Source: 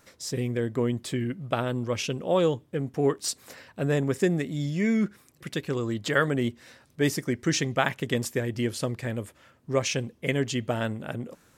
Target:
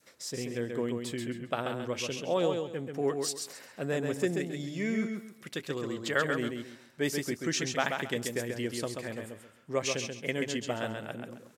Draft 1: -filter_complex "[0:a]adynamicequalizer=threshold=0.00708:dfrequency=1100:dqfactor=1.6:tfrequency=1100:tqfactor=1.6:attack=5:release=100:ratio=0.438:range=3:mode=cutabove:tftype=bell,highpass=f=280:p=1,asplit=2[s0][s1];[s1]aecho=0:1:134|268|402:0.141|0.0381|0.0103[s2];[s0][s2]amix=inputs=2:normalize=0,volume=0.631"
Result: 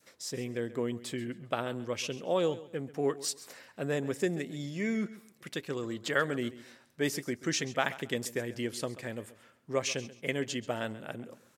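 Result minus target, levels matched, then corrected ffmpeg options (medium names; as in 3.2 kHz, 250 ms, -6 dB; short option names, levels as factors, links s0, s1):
echo-to-direct -12 dB
-filter_complex "[0:a]adynamicequalizer=threshold=0.00708:dfrequency=1100:dqfactor=1.6:tfrequency=1100:tqfactor=1.6:attack=5:release=100:ratio=0.438:range=3:mode=cutabove:tftype=bell,highpass=f=280:p=1,asplit=2[s0][s1];[s1]aecho=0:1:134|268|402|536:0.562|0.152|0.041|0.0111[s2];[s0][s2]amix=inputs=2:normalize=0,volume=0.631"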